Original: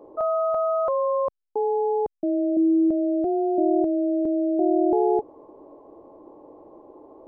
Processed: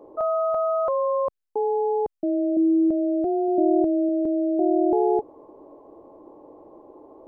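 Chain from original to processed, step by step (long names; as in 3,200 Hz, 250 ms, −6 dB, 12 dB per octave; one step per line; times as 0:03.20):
0:03.48–0:04.09: low-shelf EQ 250 Hz +4 dB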